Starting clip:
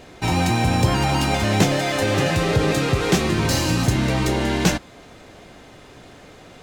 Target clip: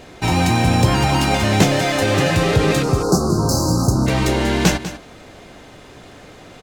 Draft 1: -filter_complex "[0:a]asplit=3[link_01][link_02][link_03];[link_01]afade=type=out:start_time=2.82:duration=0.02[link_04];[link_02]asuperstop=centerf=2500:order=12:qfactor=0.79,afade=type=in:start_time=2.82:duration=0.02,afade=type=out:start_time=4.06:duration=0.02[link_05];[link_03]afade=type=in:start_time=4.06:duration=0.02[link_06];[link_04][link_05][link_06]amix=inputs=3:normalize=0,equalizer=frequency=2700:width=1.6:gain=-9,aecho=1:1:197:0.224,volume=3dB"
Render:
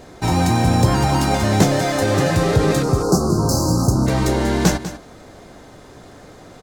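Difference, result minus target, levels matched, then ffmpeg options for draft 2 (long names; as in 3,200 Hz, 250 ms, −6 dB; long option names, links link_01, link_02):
2,000 Hz band −3.5 dB
-filter_complex "[0:a]asplit=3[link_01][link_02][link_03];[link_01]afade=type=out:start_time=2.82:duration=0.02[link_04];[link_02]asuperstop=centerf=2500:order=12:qfactor=0.79,afade=type=in:start_time=2.82:duration=0.02,afade=type=out:start_time=4.06:duration=0.02[link_05];[link_03]afade=type=in:start_time=4.06:duration=0.02[link_06];[link_04][link_05][link_06]amix=inputs=3:normalize=0,aecho=1:1:197:0.224,volume=3dB"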